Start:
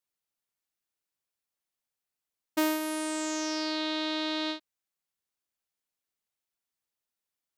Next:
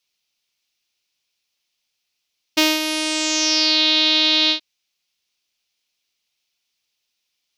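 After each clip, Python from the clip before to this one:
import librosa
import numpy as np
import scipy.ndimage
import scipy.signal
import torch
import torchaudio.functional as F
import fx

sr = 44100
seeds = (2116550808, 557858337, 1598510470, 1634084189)

y = fx.band_shelf(x, sr, hz=3700.0, db=13.0, octaves=1.7)
y = y * 10.0 ** (6.5 / 20.0)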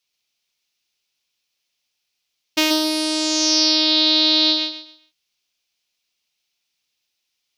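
y = fx.echo_feedback(x, sr, ms=132, feedback_pct=27, wet_db=-4.5)
y = y * 10.0 ** (-1.5 / 20.0)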